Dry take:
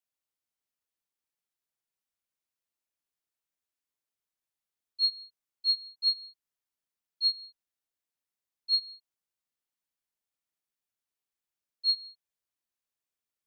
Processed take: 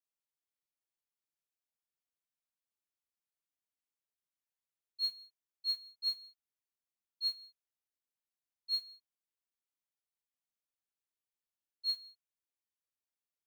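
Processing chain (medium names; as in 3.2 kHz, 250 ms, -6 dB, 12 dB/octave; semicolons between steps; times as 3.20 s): modulation noise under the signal 25 dB; trim -8 dB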